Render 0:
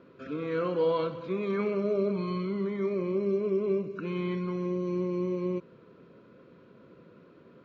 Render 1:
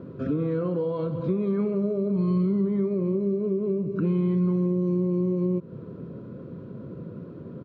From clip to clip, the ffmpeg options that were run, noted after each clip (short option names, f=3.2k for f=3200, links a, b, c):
-af "firequalizer=gain_entry='entry(580,0);entry(2300,-11);entry(3300,-8)':delay=0.05:min_phase=1,acompressor=threshold=-38dB:ratio=6,equalizer=f=110:t=o:w=2.6:g=14.5,volume=8dB"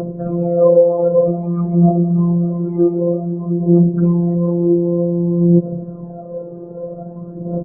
-af "aphaser=in_gain=1:out_gain=1:delay=2.6:decay=0.71:speed=0.53:type=triangular,afftfilt=real='hypot(re,im)*cos(PI*b)':imag='0':win_size=1024:overlap=0.75,lowpass=f=680:t=q:w=4.9,volume=9dB"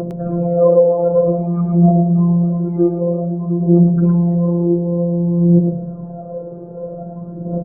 -af "aecho=1:1:109:0.501"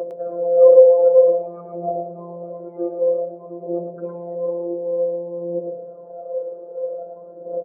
-af "highpass=f=520:t=q:w=4.1,volume=-10dB"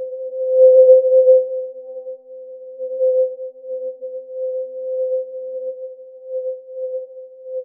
-filter_complex "[0:a]afftfilt=real='re*between(b*sr/4096,110,770)':imag='im*between(b*sr/4096,110,770)':win_size=4096:overlap=0.75,asplit=2[a][b];[b]aecho=0:1:115|343:0.596|0.188[c];[a][c]amix=inputs=2:normalize=0,afftfilt=real='re*3.46*eq(mod(b,12),0)':imag='im*3.46*eq(mod(b,12),0)':win_size=2048:overlap=0.75,volume=-6dB"